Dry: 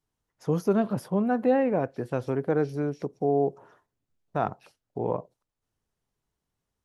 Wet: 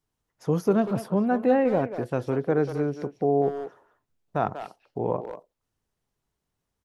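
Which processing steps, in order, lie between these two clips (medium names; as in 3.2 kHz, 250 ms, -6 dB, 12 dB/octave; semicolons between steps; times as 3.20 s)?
speakerphone echo 190 ms, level -9 dB; trim +1.5 dB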